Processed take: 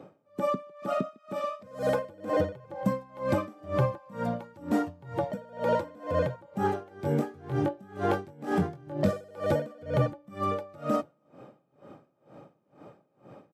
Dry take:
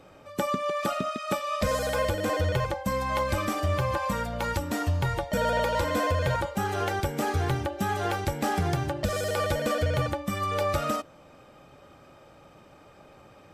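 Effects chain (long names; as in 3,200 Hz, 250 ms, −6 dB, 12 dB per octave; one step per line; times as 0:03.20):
high-pass filter 130 Hz 24 dB per octave
tilt shelving filter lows +9 dB, about 1,300 Hz
brickwall limiter −15 dBFS, peak gain reduction 7 dB
0:06.89–0:09.11: double-tracking delay 21 ms −5 dB
single-tap delay 279 ms −23 dB
tremolo with a sine in dB 2.1 Hz, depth 27 dB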